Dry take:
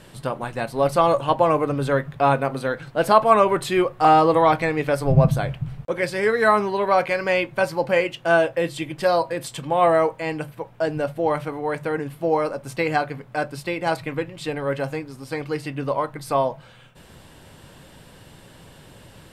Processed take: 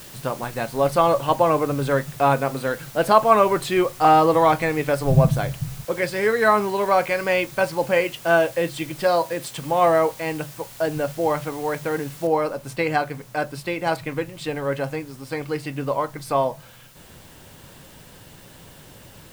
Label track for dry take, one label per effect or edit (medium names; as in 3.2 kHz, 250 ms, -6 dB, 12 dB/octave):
9.070000	9.560000	high-pass 120 Hz
12.270000	12.270000	noise floor step -43 dB -52 dB